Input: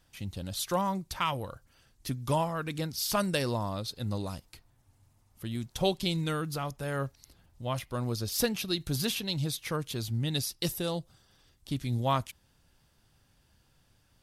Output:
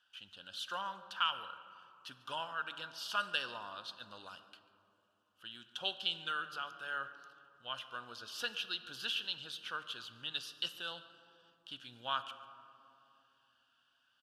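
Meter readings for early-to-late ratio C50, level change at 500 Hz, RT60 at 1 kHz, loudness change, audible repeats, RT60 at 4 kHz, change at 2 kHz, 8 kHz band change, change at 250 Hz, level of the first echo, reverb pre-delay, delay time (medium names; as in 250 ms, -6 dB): 12.0 dB, -17.5 dB, 2.7 s, -7.5 dB, 1, 1.3 s, 0.0 dB, -17.0 dB, -25.0 dB, -20.0 dB, 4 ms, 143 ms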